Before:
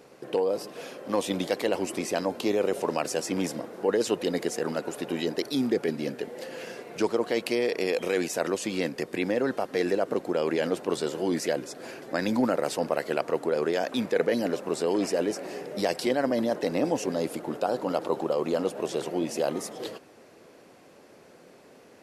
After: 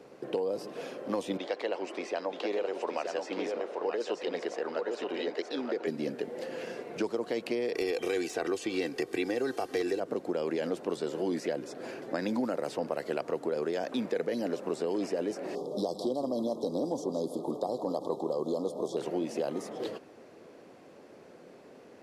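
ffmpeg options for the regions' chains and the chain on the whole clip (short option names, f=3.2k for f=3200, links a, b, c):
-filter_complex "[0:a]asettb=1/sr,asplit=3[a][b][c];[a]atrim=end=1.374[d];[b]atrim=start=1.37:end=5.87,asetpts=PTS-STARTPTS,afade=t=in:d=0.004:c=qsin,afade=t=out:st=4.496:d=0.004:c=qsin,highpass=490,lowpass=4.4k,aecho=1:1:927:0.531,atrim=end_sample=198450[e];[c]atrim=start=5.866[f];[d][e]acrossfade=d=0.004:c1=hsin:c2=qsin[g];[g][f]acrossfade=d=0.004:c1=qsin:c2=hsin,asettb=1/sr,asplit=3[h][i][j];[h]atrim=end=7.754[k];[i]atrim=start=7.75:end=10,asetpts=PTS-STARTPTS,afade=t=in:d=0.004:c=qsin,afade=t=out:st=2.246:d=0.004:c=qsin,highshelf=f=2.9k:g=11,aecho=1:1:2.6:0.58,atrim=end_sample=99225,aeval=exprs='0.211*(abs(mod(val(0)/0.211+3,4)-2)-1)':c=same[l];[j]atrim=start=9.996[m];[k][l]acrossfade=d=0.004:c1=hsin:c2=qsin[n];[n][m]acrossfade=d=0.004:c1=qsin:c2=hsin,asettb=1/sr,asplit=3[o][p][q];[o]atrim=end=15.554[r];[p]atrim=start=15.55:end=18.97,asetpts=PTS-STARTPTS,afade=t=in:d=0.004:c=qsin,afade=t=out:st=3.416:d=0.004:c=qsin,asuperstop=centerf=2000:order=20:qfactor=0.97,aecho=1:1:161:0.211,atrim=end_sample=150822[s];[q]atrim=start=18.966[t];[r][s]acrossfade=d=0.004:c1=hsin:c2=qsin[u];[u][t]acrossfade=d=0.004:c1=qsin:c2=hsin,equalizer=f=350:t=o:w=2.6:g=4.5,acrossover=split=160|3900[v][w][x];[v]acompressor=threshold=-48dB:ratio=4[y];[w]acompressor=threshold=-26dB:ratio=4[z];[x]acompressor=threshold=-43dB:ratio=4[aa];[y][z][aa]amix=inputs=3:normalize=0,highshelf=f=9.2k:g=-10,volume=-3dB"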